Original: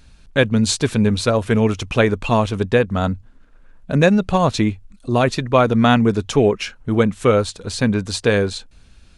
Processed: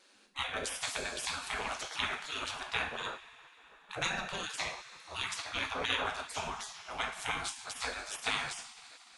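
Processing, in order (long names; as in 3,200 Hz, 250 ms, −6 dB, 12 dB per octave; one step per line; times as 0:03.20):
ring modulation 100 Hz
coupled-rooms reverb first 0.46 s, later 3.4 s, from −18 dB, DRR 2 dB
gate on every frequency bin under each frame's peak −20 dB weak
level −3.5 dB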